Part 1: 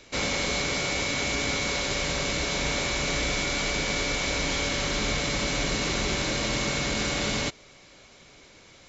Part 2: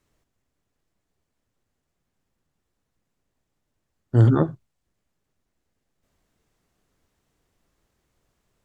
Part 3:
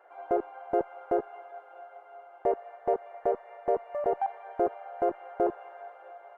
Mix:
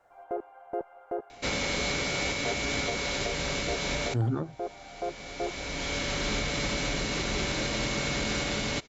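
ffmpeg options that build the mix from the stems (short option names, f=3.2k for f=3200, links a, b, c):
-filter_complex "[0:a]highshelf=f=6.9k:g=-4.5,bandreject=f=1.1k:w=19,adelay=1300,volume=-0.5dB[a];[1:a]volume=-5.5dB,asplit=2[b][c];[2:a]volume=-6.5dB[d];[c]apad=whole_len=448996[e];[a][e]sidechaincompress=threshold=-49dB:ratio=5:attack=8:release=842[f];[f][b][d]amix=inputs=3:normalize=0,alimiter=limit=-19.5dB:level=0:latency=1:release=313"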